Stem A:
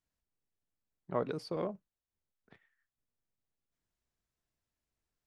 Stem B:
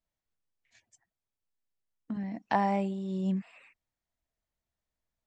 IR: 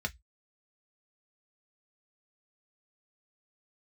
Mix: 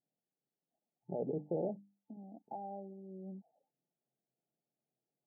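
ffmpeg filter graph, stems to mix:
-filter_complex "[0:a]bandreject=frequency=50:width_type=h:width=6,bandreject=frequency=100:width_type=h:width=6,bandreject=frequency=150:width_type=h:width=6,bandreject=frequency=200:width_type=h:width=6,bandreject=frequency=250:width_type=h:width=6,bandreject=frequency=300:width_type=h:width=6,alimiter=level_in=4dB:limit=-24dB:level=0:latency=1:release=31,volume=-4dB,volume=2.5dB[link_01];[1:a]highpass=270,acompressor=threshold=-34dB:ratio=2,volume=-9.5dB[link_02];[link_01][link_02]amix=inputs=2:normalize=0,afftfilt=real='re*between(b*sr/4096,120,880)':imag='im*between(b*sr/4096,120,880)':win_size=4096:overlap=0.75"

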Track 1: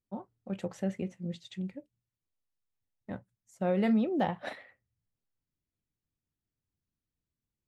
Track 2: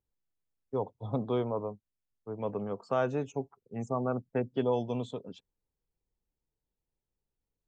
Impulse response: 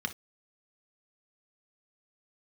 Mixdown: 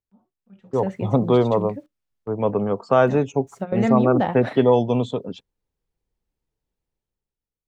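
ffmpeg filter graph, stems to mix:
-filter_complex "[0:a]acrusher=bits=11:mix=0:aa=0.000001,acompressor=mode=upward:threshold=-45dB:ratio=2.5,volume=-4.5dB,asplit=2[link_01][link_02];[link_02]volume=-20dB[link_03];[1:a]agate=range=-7dB:threshold=-53dB:ratio=16:detection=peak,volume=1dB,asplit=2[link_04][link_05];[link_05]apad=whole_len=338647[link_06];[link_01][link_06]sidechaingate=range=-33dB:threshold=-59dB:ratio=16:detection=peak[link_07];[2:a]atrim=start_sample=2205[link_08];[link_03][link_08]afir=irnorm=-1:irlink=0[link_09];[link_07][link_04][link_09]amix=inputs=3:normalize=0,highshelf=frequency=6500:gain=-8.5,dynaudnorm=framelen=160:gausssize=9:maxgain=12.5dB"

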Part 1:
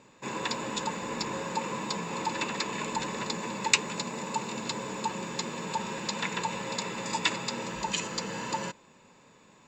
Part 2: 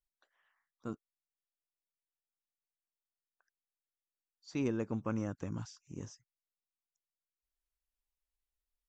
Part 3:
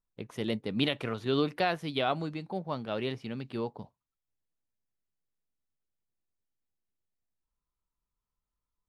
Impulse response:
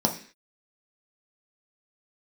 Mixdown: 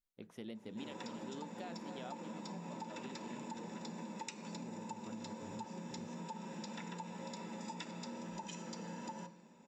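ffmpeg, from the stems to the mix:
-filter_complex "[0:a]adelay=550,volume=-13.5dB,asplit=2[link_01][link_02];[link_02]volume=-9.5dB[link_03];[1:a]acompressor=threshold=-40dB:ratio=6,volume=-4dB[link_04];[2:a]volume=-13dB,asplit=3[link_05][link_06][link_07];[link_06]volume=-22.5dB[link_08];[link_07]volume=-10.5dB[link_09];[3:a]atrim=start_sample=2205[link_10];[link_03][link_08]amix=inputs=2:normalize=0[link_11];[link_11][link_10]afir=irnorm=-1:irlink=0[link_12];[link_09]aecho=0:1:275:1[link_13];[link_01][link_04][link_05][link_12][link_13]amix=inputs=5:normalize=0,acompressor=threshold=-43dB:ratio=6"

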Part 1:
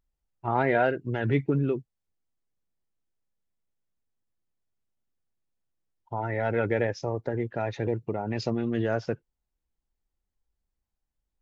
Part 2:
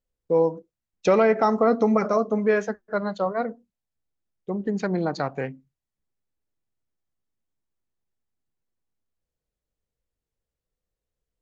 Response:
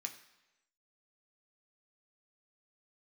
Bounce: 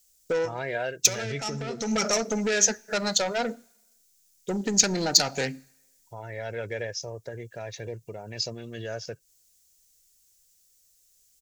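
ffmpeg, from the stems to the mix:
-filter_complex "[0:a]aecho=1:1:1.8:0.53,volume=-10dB,asplit=2[link_01][link_02];[1:a]highshelf=frequency=2600:gain=8.5,acompressor=threshold=-23dB:ratio=5,asoftclip=type=tanh:threshold=-25dB,volume=2.5dB,asplit=2[link_03][link_04];[link_04]volume=-12.5dB[link_05];[link_02]apad=whole_len=503276[link_06];[link_03][link_06]sidechaincompress=threshold=-46dB:ratio=8:attack=16:release=195[link_07];[2:a]atrim=start_sample=2205[link_08];[link_05][link_08]afir=irnorm=-1:irlink=0[link_09];[link_01][link_07][link_09]amix=inputs=3:normalize=0,asuperstop=centerf=1100:order=4:qfactor=5.9,equalizer=frequency=6100:width=1.2:gain=8.5,crystalizer=i=4.5:c=0"

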